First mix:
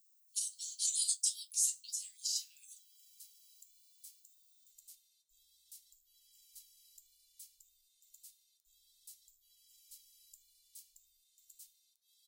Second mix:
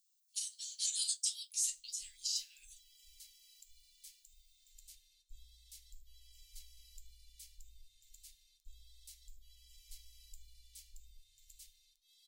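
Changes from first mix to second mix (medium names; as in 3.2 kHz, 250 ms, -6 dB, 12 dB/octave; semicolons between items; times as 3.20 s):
speech -3.0 dB; master: remove pre-emphasis filter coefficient 0.97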